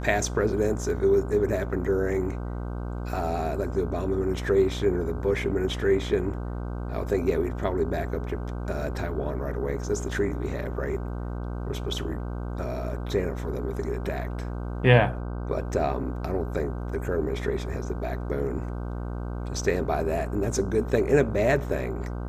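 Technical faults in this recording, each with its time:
buzz 60 Hz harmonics 26 -32 dBFS

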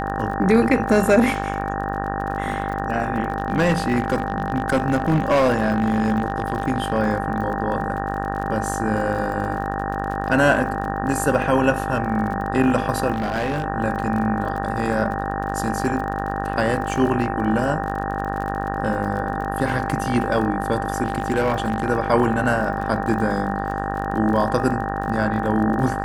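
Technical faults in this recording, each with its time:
buzz 50 Hz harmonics 37 -27 dBFS
crackle 37 per s -29 dBFS
whine 790 Hz -27 dBFS
3.30–6.99 s: clipped -13 dBFS
13.12–13.64 s: clipped -19 dBFS
21.03–21.90 s: clipped -14 dBFS

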